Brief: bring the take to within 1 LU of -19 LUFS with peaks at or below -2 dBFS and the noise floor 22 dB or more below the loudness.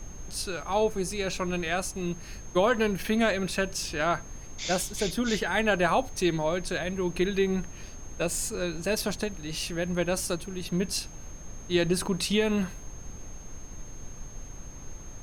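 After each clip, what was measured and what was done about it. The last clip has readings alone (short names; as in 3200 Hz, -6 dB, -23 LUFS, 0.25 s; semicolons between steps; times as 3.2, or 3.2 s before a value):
steady tone 6400 Hz; tone level -48 dBFS; noise floor -43 dBFS; noise floor target -51 dBFS; loudness -28.5 LUFS; peak -12.0 dBFS; loudness target -19.0 LUFS
-> notch 6400 Hz, Q 30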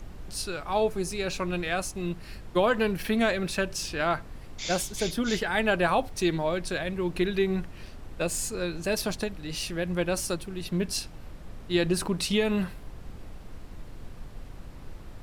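steady tone none; noise floor -44 dBFS; noise floor target -51 dBFS
-> noise print and reduce 7 dB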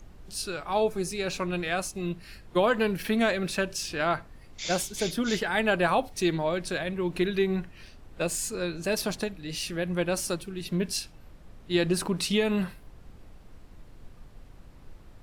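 noise floor -51 dBFS; loudness -28.5 LUFS; peak -12.0 dBFS; loudness target -19.0 LUFS
-> gain +9.5 dB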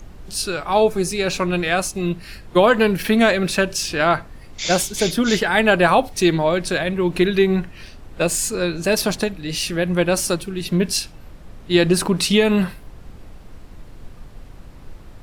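loudness -19.0 LUFS; peak -2.5 dBFS; noise floor -41 dBFS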